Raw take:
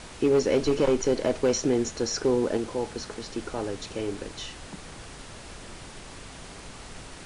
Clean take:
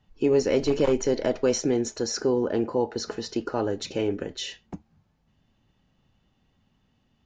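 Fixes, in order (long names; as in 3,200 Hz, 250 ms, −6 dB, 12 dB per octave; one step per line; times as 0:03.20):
clipped peaks rebuilt −15.5 dBFS
noise reduction from a noise print 25 dB
level correction +5 dB, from 0:02.57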